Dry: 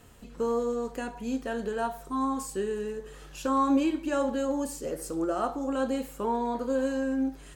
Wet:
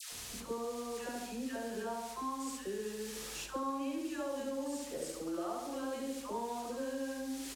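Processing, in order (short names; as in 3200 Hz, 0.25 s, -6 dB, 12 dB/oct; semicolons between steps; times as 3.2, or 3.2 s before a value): bell 1400 Hz -4 dB 0.24 oct; added noise blue -40 dBFS; LPF 8100 Hz 12 dB/oct; low shelf 390 Hz -3.5 dB; feedback echo 70 ms, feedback 46%, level -3.5 dB; compressor 3:1, threshold -41 dBFS, peak gain reduction 15.5 dB; dispersion lows, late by 0.121 s, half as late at 940 Hz; gain +1 dB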